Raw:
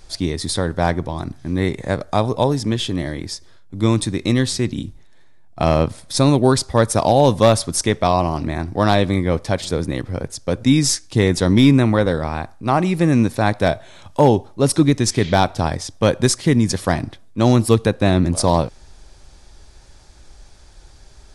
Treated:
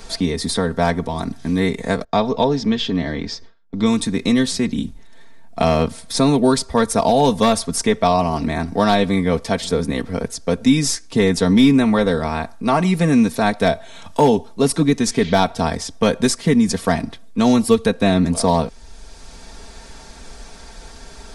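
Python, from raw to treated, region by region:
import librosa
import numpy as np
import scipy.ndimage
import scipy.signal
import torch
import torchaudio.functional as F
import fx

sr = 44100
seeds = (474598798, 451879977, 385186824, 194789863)

y = fx.chain(x, sr, fx.lowpass(hz=5600.0, slope=24),
    fx.gate_hold(open_db=-29.0, close_db=-35.0, hold_ms=71.0, range_db=-21, attack_ms=1.4, release_ms=100.0), at=(2.04, 3.86))
y = y + 0.78 * np.pad(y, (int(4.4 * sr / 1000.0), 0))[:len(y)]
y = fx.band_squash(y, sr, depth_pct=40)
y = y * 10.0 ** (-1.5 / 20.0)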